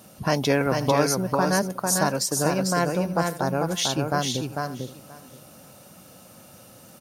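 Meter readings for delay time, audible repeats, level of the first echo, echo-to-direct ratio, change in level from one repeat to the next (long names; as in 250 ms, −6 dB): 447 ms, 4, −4.0 dB, −4.0 dB, repeats not evenly spaced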